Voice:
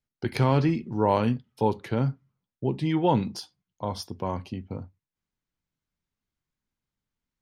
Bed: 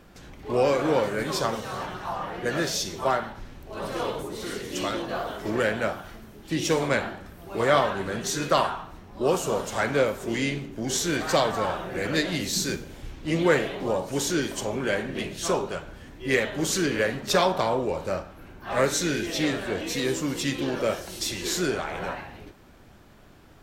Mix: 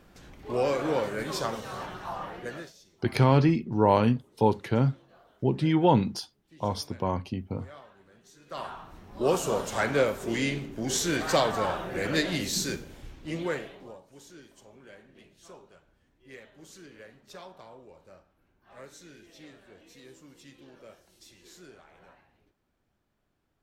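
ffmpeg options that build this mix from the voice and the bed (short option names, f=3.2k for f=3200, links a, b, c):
-filter_complex "[0:a]adelay=2800,volume=1.5dB[a];[1:a]volume=22dB,afade=t=out:st=2.25:d=0.48:silence=0.0668344,afade=t=in:st=8.46:d=0.71:silence=0.0473151,afade=t=out:st=12.36:d=1.65:silence=0.0707946[b];[a][b]amix=inputs=2:normalize=0"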